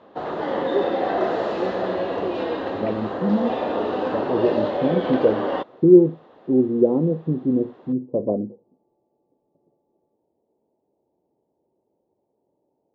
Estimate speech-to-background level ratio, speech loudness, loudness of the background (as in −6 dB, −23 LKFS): 3.5 dB, −21.5 LKFS, −25.0 LKFS